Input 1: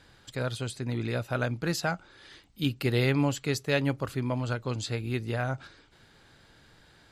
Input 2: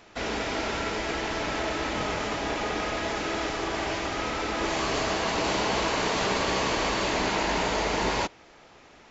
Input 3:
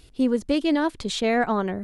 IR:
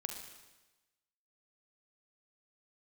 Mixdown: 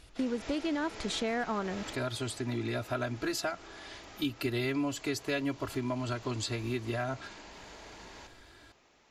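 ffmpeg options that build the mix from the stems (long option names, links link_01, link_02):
-filter_complex "[0:a]aecho=1:1:3:1,adelay=1600,volume=-1dB[link_01];[1:a]highshelf=frequency=4500:gain=7.5,alimiter=level_in=4.5dB:limit=-24dB:level=0:latency=1,volume=-4.5dB,volume=-7dB,asplit=2[link_02][link_03];[link_03]volume=-10.5dB[link_04];[2:a]equalizer=frequency=1500:width=1.5:gain=4,aeval=exprs='clip(val(0),-1,0.158)':channel_layout=same,volume=-4.5dB,asplit=2[link_05][link_06];[link_06]apad=whole_len=401353[link_07];[link_02][link_07]sidechaingate=range=-13dB:threshold=-51dB:ratio=16:detection=peak[link_08];[3:a]atrim=start_sample=2205[link_09];[link_04][link_09]afir=irnorm=-1:irlink=0[link_10];[link_01][link_08][link_05][link_10]amix=inputs=4:normalize=0,acompressor=threshold=-31dB:ratio=3"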